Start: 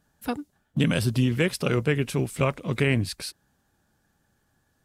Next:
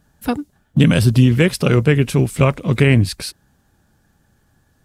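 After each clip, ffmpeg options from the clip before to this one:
ffmpeg -i in.wav -af "lowshelf=frequency=210:gain=6.5,volume=7dB" out.wav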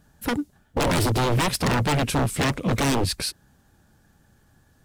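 ffmpeg -i in.wav -af "aeval=exprs='0.15*(abs(mod(val(0)/0.15+3,4)-2)-1)':channel_layout=same" out.wav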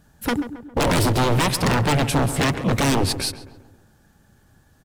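ffmpeg -i in.wav -filter_complex "[0:a]asplit=2[link_01][link_02];[link_02]adelay=135,lowpass=frequency=1700:poles=1,volume=-11dB,asplit=2[link_03][link_04];[link_04]adelay=135,lowpass=frequency=1700:poles=1,volume=0.53,asplit=2[link_05][link_06];[link_06]adelay=135,lowpass=frequency=1700:poles=1,volume=0.53,asplit=2[link_07][link_08];[link_08]adelay=135,lowpass=frequency=1700:poles=1,volume=0.53,asplit=2[link_09][link_10];[link_10]adelay=135,lowpass=frequency=1700:poles=1,volume=0.53,asplit=2[link_11][link_12];[link_12]adelay=135,lowpass=frequency=1700:poles=1,volume=0.53[link_13];[link_01][link_03][link_05][link_07][link_09][link_11][link_13]amix=inputs=7:normalize=0,volume=2.5dB" out.wav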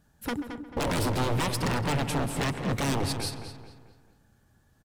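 ffmpeg -i in.wav -filter_complex "[0:a]asplit=2[link_01][link_02];[link_02]adelay=220,lowpass=frequency=3500:poles=1,volume=-8dB,asplit=2[link_03][link_04];[link_04]adelay=220,lowpass=frequency=3500:poles=1,volume=0.43,asplit=2[link_05][link_06];[link_06]adelay=220,lowpass=frequency=3500:poles=1,volume=0.43,asplit=2[link_07][link_08];[link_08]adelay=220,lowpass=frequency=3500:poles=1,volume=0.43,asplit=2[link_09][link_10];[link_10]adelay=220,lowpass=frequency=3500:poles=1,volume=0.43[link_11];[link_01][link_03][link_05][link_07][link_09][link_11]amix=inputs=6:normalize=0,volume=-9dB" out.wav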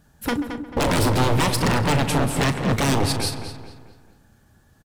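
ffmpeg -i in.wav -filter_complex "[0:a]asplit=2[link_01][link_02];[link_02]adelay=38,volume=-13dB[link_03];[link_01][link_03]amix=inputs=2:normalize=0,volume=7.5dB" out.wav

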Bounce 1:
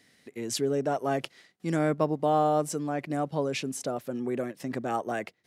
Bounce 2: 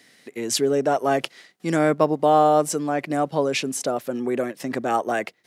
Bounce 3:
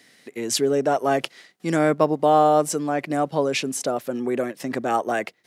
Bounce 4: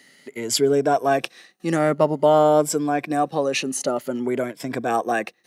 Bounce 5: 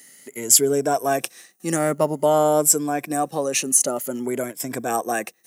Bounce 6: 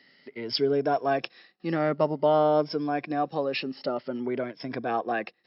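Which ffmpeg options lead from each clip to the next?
ffmpeg -i in.wav -af "highpass=frequency=270:poles=1,volume=8.5dB" out.wav
ffmpeg -i in.wav -af anull out.wav
ffmpeg -i in.wav -af "afftfilt=real='re*pow(10,9/40*sin(2*PI*(1.7*log(max(b,1)*sr/1024/100)/log(2)-(0.52)*(pts-256)/sr)))':imag='im*pow(10,9/40*sin(2*PI*(1.7*log(max(b,1)*sr/1024/100)/log(2)-(0.52)*(pts-256)/sr)))':win_size=1024:overlap=0.75" out.wav
ffmpeg -i in.wav -af "aexciter=amount=5:drive=6.5:freq=6000,volume=-2dB" out.wav
ffmpeg -i in.wav -af "volume=-3.5dB" -ar 12000 -c:a libmp3lame -b:a 64k out.mp3

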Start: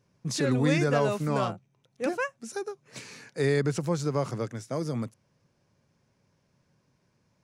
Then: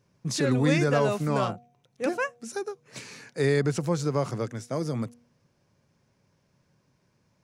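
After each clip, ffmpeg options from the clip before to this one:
ffmpeg -i in.wav -af "bandreject=frequency=239.6:width_type=h:width=4,bandreject=frequency=479.2:width_type=h:width=4,bandreject=frequency=718.8:width_type=h:width=4,volume=1.5dB" out.wav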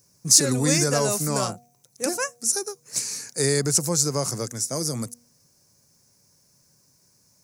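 ffmpeg -i in.wav -af "aexciter=amount=7.3:drive=8.1:freq=4800" out.wav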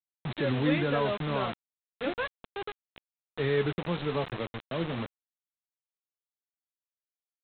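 ffmpeg -i in.wav -af "flanger=delay=7.1:depth=5.9:regen=54:speed=0.33:shape=triangular,aresample=8000,acrusher=bits=5:mix=0:aa=0.000001,aresample=44100" out.wav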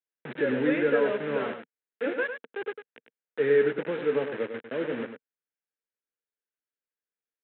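ffmpeg -i in.wav -af "highpass=frequency=170:width=0.5412,highpass=frequency=170:width=1.3066,equalizer=frequency=170:width_type=q:width=4:gain=-10,equalizer=frequency=250:width_type=q:width=4:gain=3,equalizer=frequency=460:width_type=q:width=4:gain=9,equalizer=frequency=730:width_type=q:width=4:gain=-6,equalizer=frequency=1100:width_type=q:width=4:gain=-8,equalizer=frequency=1600:width_type=q:width=4:gain=7,lowpass=frequency=2700:width=0.5412,lowpass=frequency=2700:width=1.3066,aecho=1:1:101:0.376" out.wav

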